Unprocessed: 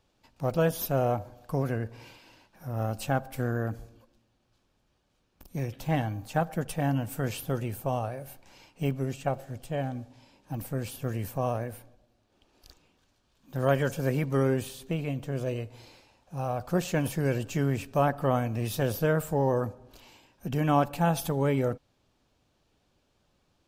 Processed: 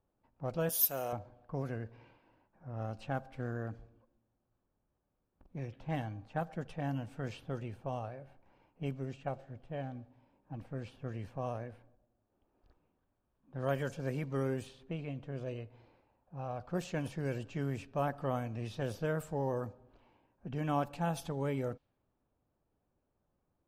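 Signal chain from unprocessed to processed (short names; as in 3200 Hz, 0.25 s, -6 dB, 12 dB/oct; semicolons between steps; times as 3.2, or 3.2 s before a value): 0.69–1.13 RIAA curve recording; low-pass opened by the level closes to 1200 Hz, open at -21 dBFS; gain -9 dB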